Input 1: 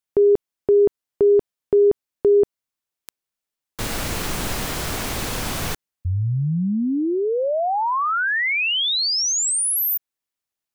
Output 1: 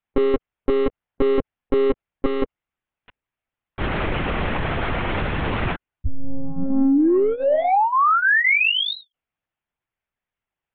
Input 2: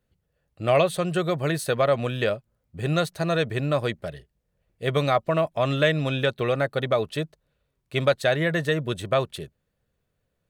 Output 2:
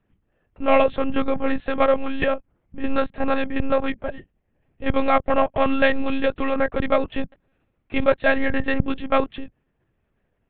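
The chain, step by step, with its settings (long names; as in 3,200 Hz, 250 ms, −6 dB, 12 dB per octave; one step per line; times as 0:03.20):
low-pass filter 2,800 Hz 24 dB per octave
in parallel at −4 dB: soft clipping −25 dBFS
on the sum: notch comb filter 490 Hz
one-pitch LPC vocoder at 8 kHz 270 Hz
level +3 dB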